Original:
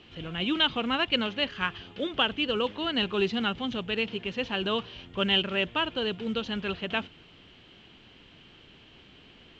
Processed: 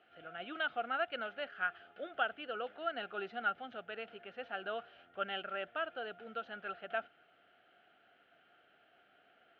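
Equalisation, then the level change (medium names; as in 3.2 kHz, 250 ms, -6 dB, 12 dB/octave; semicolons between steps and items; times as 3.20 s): two resonant band-passes 1 kHz, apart 0.98 oct; distance through air 54 m; +1.0 dB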